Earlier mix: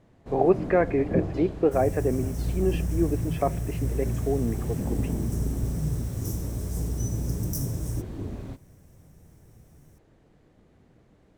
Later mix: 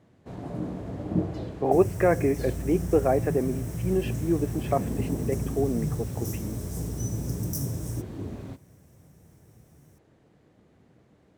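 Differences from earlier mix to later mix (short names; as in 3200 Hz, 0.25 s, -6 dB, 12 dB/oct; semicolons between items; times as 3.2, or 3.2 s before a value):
speech: entry +1.30 s; master: add HPF 80 Hz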